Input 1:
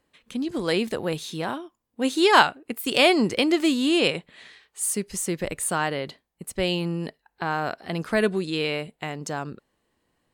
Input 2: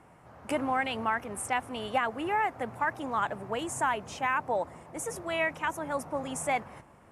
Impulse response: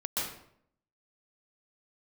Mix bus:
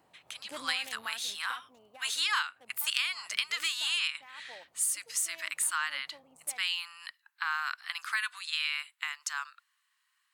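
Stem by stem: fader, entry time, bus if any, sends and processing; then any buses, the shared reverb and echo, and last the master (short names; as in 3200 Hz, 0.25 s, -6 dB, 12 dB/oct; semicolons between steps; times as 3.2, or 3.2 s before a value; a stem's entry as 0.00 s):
+1.5 dB, 0.00 s, no send, steep high-pass 1100 Hz 48 dB/oct
-5.0 dB, 0.00 s, no send, Wiener smoothing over 25 samples; tilt +3.5 dB/oct; limiter -21.5 dBFS, peak gain reduction 7.5 dB; auto duck -14 dB, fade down 1.95 s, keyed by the first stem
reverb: off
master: compressor 12:1, threshold -26 dBFS, peak gain reduction 14.5 dB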